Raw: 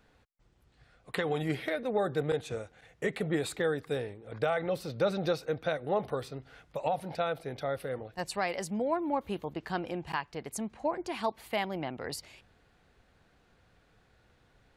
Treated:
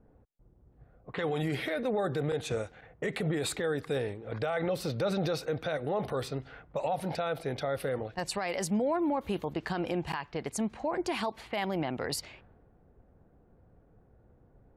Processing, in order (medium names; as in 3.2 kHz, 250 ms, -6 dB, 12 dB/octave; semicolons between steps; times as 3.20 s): peak limiter -28.5 dBFS, peak gain reduction 10.5 dB; level-controlled noise filter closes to 490 Hz, open at -36.5 dBFS; trim +6 dB